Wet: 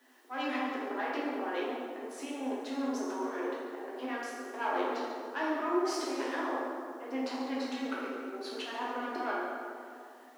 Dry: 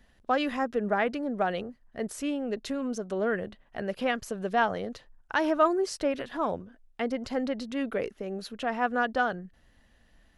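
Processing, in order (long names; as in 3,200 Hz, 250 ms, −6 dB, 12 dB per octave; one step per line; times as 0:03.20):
harmonic and percussive parts rebalanced percussive +4 dB
volume swells 324 ms
harmonic generator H 3 −21 dB, 4 −15 dB, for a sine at −15.5 dBFS
compressor whose output falls as the input rises −36 dBFS, ratio −1
background noise blue −62 dBFS
Chebyshev high-pass with heavy ripple 250 Hz, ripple 6 dB
high-shelf EQ 7,600 Hz −11.5 dB
on a send: echo with a time of its own for lows and highs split 1,100 Hz, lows 359 ms, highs 140 ms, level −13 dB
on the sum: dense smooth reverb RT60 1.8 s, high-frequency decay 0.6×, DRR −6.5 dB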